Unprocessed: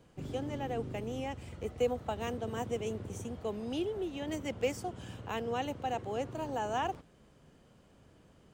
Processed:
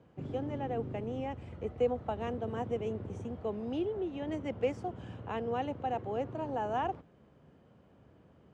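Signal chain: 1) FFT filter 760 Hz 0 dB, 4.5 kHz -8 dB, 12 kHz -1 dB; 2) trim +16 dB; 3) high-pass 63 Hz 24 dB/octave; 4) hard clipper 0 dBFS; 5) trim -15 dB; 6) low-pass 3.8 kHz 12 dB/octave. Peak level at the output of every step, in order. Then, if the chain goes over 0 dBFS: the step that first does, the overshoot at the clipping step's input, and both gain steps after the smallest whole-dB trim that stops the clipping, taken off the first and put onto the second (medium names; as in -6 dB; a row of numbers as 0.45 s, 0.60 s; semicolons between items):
-20.5 dBFS, -4.5 dBFS, -4.0 dBFS, -4.0 dBFS, -19.0 dBFS, -19.0 dBFS; nothing clips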